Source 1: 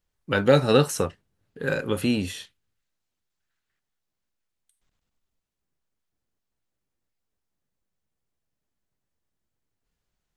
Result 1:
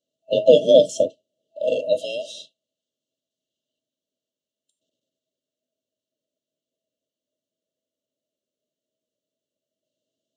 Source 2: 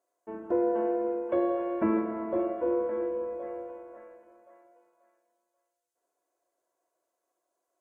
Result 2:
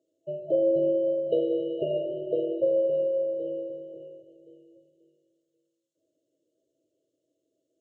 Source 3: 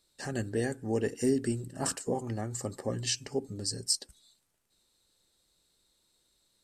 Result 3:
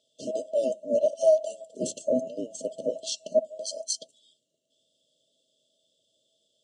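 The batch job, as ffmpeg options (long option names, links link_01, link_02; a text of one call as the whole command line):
ffmpeg -i in.wav -af "afftfilt=real='real(if(between(b,1,1008),(2*floor((b-1)/48)+1)*48-b,b),0)':imag='imag(if(between(b,1,1008),(2*floor((b-1)/48)+1)*48-b,b),0)*if(between(b,1,1008),-1,1)':win_size=2048:overlap=0.75,highpass=frequency=110:width=0.5412,highpass=frequency=110:width=1.3066,equalizer=frequency=260:width_type=q:width=4:gain=8,equalizer=frequency=650:width_type=q:width=4:gain=8,equalizer=frequency=1300:width_type=q:width=4:gain=3,equalizer=frequency=5000:width_type=q:width=4:gain=-8,lowpass=frequency=6900:width=0.5412,lowpass=frequency=6900:width=1.3066,afftfilt=real='re*(1-between(b*sr/4096,660,2700))':imag='im*(1-between(b*sr/4096,660,2700))':win_size=4096:overlap=0.75,volume=3.5dB" out.wav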